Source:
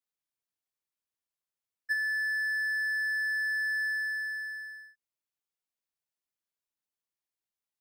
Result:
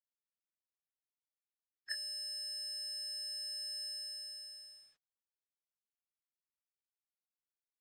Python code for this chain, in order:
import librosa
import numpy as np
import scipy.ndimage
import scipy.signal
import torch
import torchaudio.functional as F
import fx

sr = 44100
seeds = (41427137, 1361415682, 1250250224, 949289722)

y = fx.spec_gate(x, sr, threshold_db=-20, keep='weak')
y = scipy.signal.sosfilt(scipy.signal.butter(2, 5200.0, 'lowpass', fs=sr, output='sos'), y)
y = y * librosa.db_to_amplitude(16.5)